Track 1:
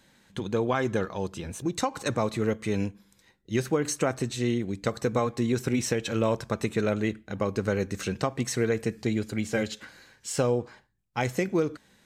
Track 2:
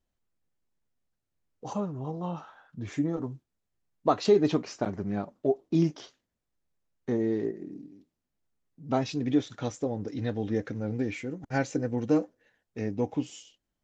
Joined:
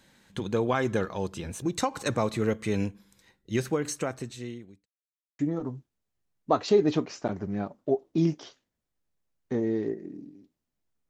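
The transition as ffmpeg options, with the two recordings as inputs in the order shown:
ffmpeg -i cue0.wav -i cue1.wav -filter_complex "[0:a]apad=whole_dur=11.09,atrim=end=11.09,asplit=2[link_01][link_02];[link_01]atrim=end=4.86,asetpts=PTS-STARTPTS,afade=type=out:start_time=3.43:duration=1.43[link_03];[link_02]atrim=start=4.86:end=5.39,asetpts=PTS-STARTPTS,volume=0[link_04];[1:a]atrim=start=2.96:end=8.66,asetpts=PTS-STARTPTS,afade=type=in:duration=0.004:curve=hsin[link_05];[link_03][link_04][link_05]concat=n=3:v=0:a=1" out.wav

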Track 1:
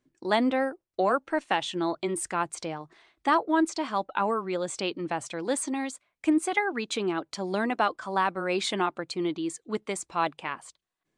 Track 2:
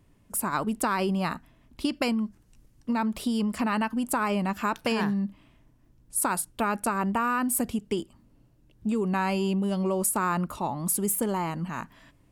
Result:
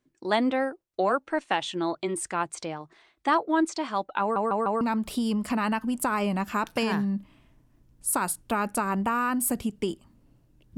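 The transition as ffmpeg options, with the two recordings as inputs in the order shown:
ffmpeg -i cue0.wav -i cue1.wav -filter_complex "[0:a]apad=whole_dur=10.77,atrim=end=10.77,asplit=4[link_01][link_02][link_03][link_04];[link_01]atrim=end=4.362[link_05];[link_02]atrim=start=4.208:end=4.362[link_06];[link_03]atrim=start=4.208:end=4.362[link_07];[link_04]atrim=start=4.208:end=4.362[link_08];[1:a]atrim=start=2.898:end=8.86[link_09];[link_05][link_06]acrossfade=duration=0.004:curve1=hsin:curve2=hsin[link_10];[link_10][link_07]acrossfade=duration=0.004:curve1=hsin:curve2=hsin[link_11];[link_11][link_08]acrossfade=duration=0.004:curve1=hsin:curve2=hsin[link_12];[link_12][link_09]acrossfade=duration=0.004:curve1=hsin:curve2=hsin" out.wav

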